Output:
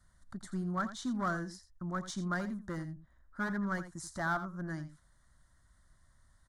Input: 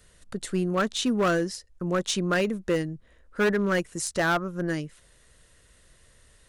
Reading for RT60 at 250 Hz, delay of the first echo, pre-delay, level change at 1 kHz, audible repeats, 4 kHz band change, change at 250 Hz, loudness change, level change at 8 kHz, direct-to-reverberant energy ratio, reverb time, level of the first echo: no reverb audible, 84 ms, no reverb audible, −7.5 dB, 1, −17.0 dB, −9.0 dB, −10.5 dB, −14.5 dB, no reverb audible, no reverb audible, −12.5 dB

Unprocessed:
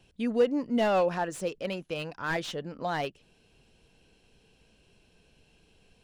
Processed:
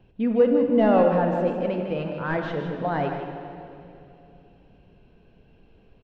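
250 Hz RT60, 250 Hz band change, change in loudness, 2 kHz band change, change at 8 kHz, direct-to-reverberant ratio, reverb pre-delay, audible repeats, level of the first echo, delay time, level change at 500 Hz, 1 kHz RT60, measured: 3.5 s, +8.5 dB, +7.0 dB, +1.5 dB, below −20 dB, 2.5 dB, 16 ms, 1, −9.5 dB, 154 ms, +7.5 dB, 2.5 s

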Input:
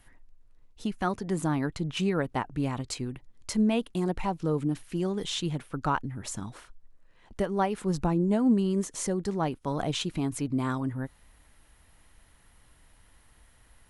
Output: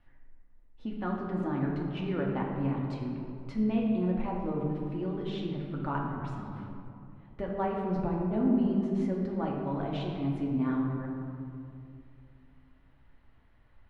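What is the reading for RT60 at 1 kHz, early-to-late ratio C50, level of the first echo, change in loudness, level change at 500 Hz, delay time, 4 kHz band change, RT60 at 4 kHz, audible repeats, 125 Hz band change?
2.3 s, 1.5 dB, no echo audible, −2.5 dB, −3.0 dB, no echo audible, −12.5 dB, 1.3 s, no echo audible, −1.5 dB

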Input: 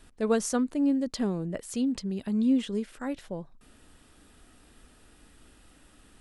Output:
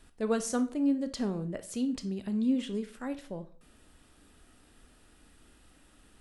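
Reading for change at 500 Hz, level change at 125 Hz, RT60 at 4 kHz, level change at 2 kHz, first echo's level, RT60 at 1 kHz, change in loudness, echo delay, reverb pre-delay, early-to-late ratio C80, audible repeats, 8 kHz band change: −3.5 dB, −3.0 dB, 0.35 s, −3.0 dB, no echo audible, 0.45 s, −3.0 dB, no echo audible, 21 ms, 19.5 dB, no echo audible, −3.0 dB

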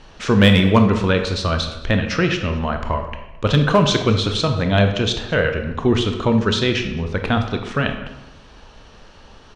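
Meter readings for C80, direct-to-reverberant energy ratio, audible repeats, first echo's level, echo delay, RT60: 9.5 dB, 5.5 dB, 1, −20.5 dB, 217 ms, 0.95 s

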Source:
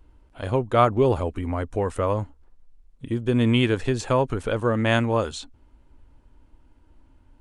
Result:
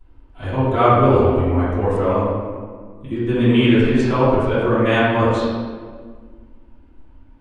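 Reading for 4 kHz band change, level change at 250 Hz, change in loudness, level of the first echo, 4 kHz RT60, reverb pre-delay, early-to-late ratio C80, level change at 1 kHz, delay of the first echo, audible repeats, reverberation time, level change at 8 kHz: +3.5 dB, +7.5 dB, +6.0 dB, no echo audible, 1.1 s, 3 ms, 0.0 dB, +6.5 dB, no echo audible, no echo audible, 1.7 s, can't be measured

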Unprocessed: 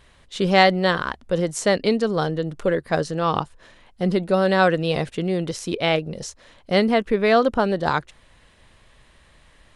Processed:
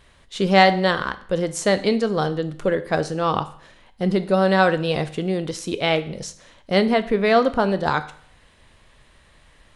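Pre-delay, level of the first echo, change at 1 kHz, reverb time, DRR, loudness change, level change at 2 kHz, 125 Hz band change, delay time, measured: 10 ms, no echo audible, +1.0 dB, 0.55 s, 11.0 dB, +0.5 dB, +0.5 dB, 0.0 dB, no echo audible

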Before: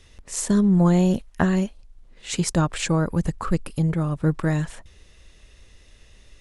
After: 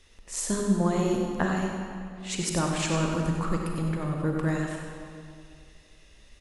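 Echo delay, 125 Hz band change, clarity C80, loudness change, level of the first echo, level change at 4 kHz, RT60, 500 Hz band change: 95 ms, −7.0 dB, 2.0 dB, −6.0 dB, −8.5 dB, −2.0 dB, 2.3 s, −2.5 dB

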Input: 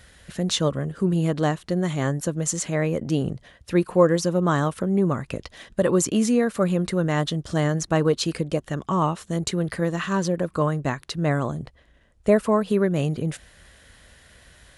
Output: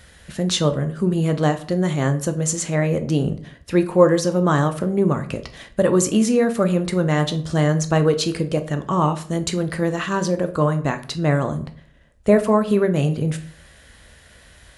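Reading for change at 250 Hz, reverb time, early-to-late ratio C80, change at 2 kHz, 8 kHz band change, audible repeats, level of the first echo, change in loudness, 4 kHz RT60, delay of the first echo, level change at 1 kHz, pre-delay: +3.0 dB, 0.55 s, 18.5 dB, +3.0 dB, +3.0 dB, no echo audible, no echo audible, +3.5 dB, 0.35 s, no echo audible, +3.0 dB, 11 ms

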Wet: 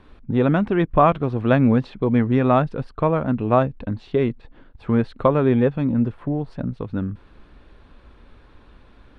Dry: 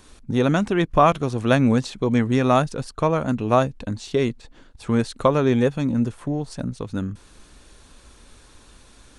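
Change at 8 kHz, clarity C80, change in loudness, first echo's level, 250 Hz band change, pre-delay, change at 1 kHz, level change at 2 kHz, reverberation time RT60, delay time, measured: below −25 dB, no reverb audible, +1.0 dB, no echo audible, +1.5 dB, no reverb audible, 0.0 dB, −1.5 dB, no reverb audible, no echo audible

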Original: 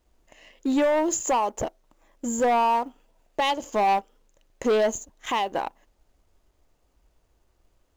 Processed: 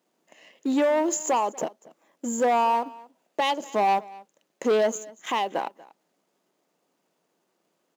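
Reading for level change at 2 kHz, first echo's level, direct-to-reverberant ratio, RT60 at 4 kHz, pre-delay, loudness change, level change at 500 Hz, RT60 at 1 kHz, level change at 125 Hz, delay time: −1.0 dB, −21.5 dB, no reverb audible, no reverb audible, no reverb audible, −0.5 dB, 0.0 dB, no reverb audible, can't be measured, 238 ms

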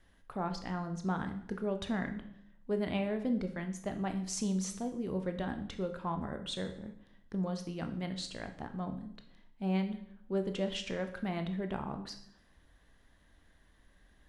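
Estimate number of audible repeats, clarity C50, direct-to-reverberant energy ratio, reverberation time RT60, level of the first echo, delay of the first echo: no echo audible, 10.5 dB, 6.5 dB, 0.70 s, no echo audible, no echo audible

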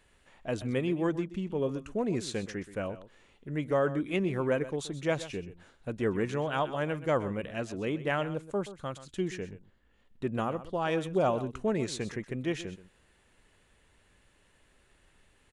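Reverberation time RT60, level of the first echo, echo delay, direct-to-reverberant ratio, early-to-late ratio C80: no reverb audible, −14.5 dB, 127 ms, no reverb audible, no reverb audible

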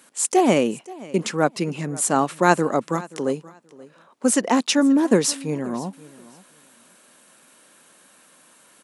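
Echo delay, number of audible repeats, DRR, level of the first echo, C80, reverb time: 528 ms, 2, no reverb audible, −20.5 dB, no reverb audible, no reverb audible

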